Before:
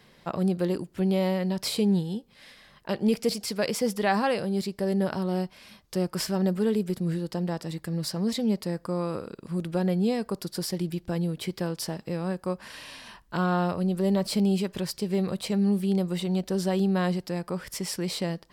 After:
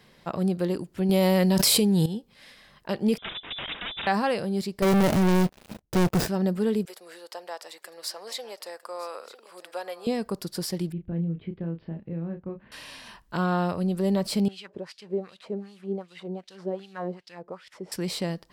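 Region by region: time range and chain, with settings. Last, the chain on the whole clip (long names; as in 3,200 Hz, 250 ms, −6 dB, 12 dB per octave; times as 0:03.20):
0:01.09–0:02.06: high-pass filter 45 Hz + high-shelf EQ 6,900 Hz +11.5 dB + envelope flattener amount 100%
0:03.18–0:04.07: wrap-around overflow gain 27 dB + voice inversion scrambler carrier 3,700 Hz
0:04.82–0:06.28: running median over 41 samples + leveller curve on the samples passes 5 + high-shelf EQ 7,200 Hz +8.5 dB
0:06.85–0:10.07: high-pass filter 560 Hz 24 dB per octave + single-tap delay 954 ms −16 dB
0:10.92–0:12.72: Gaussian smoothing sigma 4.2 samples + parametric band 970 Hz −14.5 dB 2.2 octaves + double-tracking delay 30 ms −6 dB
0:14.48–0:17.92: variable-slope delta modulation 64 kbit/s + low-shelf EQ 200 Hz +8 dB + LFO wah 2.6 Hz 400–3,700 Hz, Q 2.3
whole clip: no processing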